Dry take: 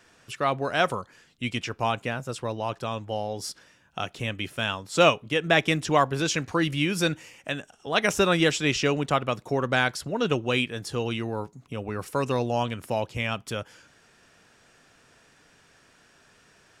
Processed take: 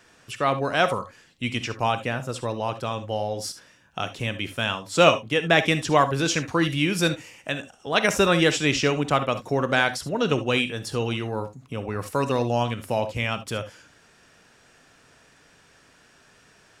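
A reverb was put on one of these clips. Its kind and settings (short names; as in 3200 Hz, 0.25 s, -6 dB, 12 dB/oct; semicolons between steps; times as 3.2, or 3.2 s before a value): non-linear reverb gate 90 ms rising, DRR 11 dB; gain +2 dB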